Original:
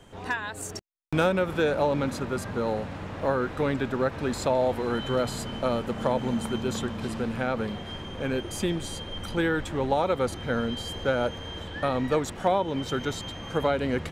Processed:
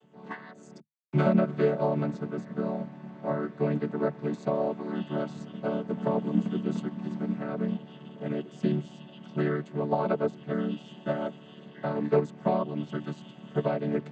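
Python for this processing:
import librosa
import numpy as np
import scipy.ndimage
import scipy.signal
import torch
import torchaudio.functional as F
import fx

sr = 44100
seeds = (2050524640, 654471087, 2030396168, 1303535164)

y = fx.chord_vocoder(x, sr, chord='major triad', root=50)
y = fx.upward_expand(y, sr, threshold_db=-37.0, expansion=1.5)
y = y * librosa.db_to_amplitude(1.5)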